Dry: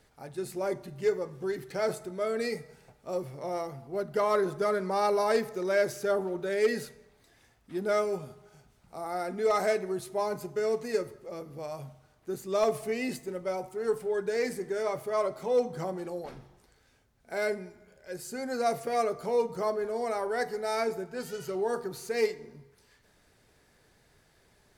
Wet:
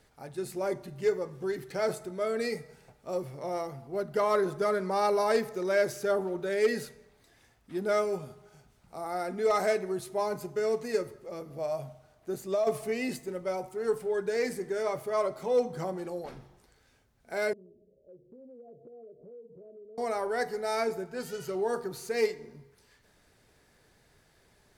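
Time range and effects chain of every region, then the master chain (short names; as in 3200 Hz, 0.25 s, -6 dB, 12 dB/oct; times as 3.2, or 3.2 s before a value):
11.5–12.67 bell 650 Hz +10 dB 0.29 oct + compressor 12:1, threshold -24 dBFS
17.53–19.98 steep low-pass 550 Hz 48 dB/oct + tilt +2.5 dB/oct + compressor 4:1, threshold -50 dBFS
whole clip: dry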